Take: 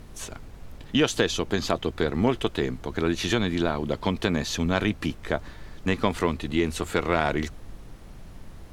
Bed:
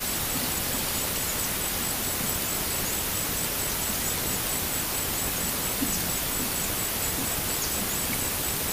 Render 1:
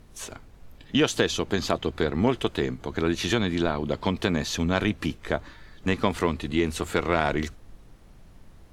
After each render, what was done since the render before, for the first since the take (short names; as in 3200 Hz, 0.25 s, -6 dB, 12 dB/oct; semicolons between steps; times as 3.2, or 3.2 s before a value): noise print and reduce 7 dB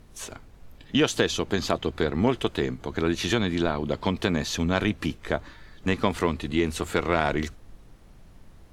nothing audible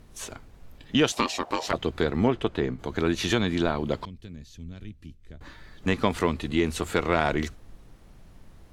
1.12–1.73 ring modulator 710 Hz; 2.27–2.79 LPF 2100 Hz 6 dB/oct; 4.05–5.41 passive tone stack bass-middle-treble 10-0-1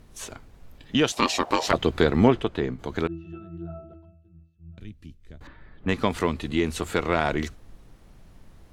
1.22–2.41 gain +5 dB; 3.07–4.78 octave resonator E, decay 0.51 s; 5.47–5.89 air absorption 460 m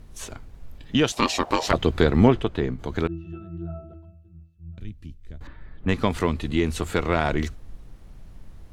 low shelf 120 Hz +8.5 dB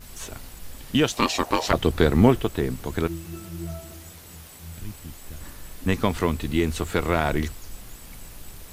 add bed -18 dB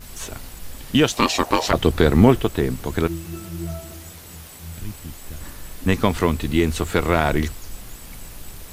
gain +4 dB; limiter -1 dBFS, peak gain reduction 3 dB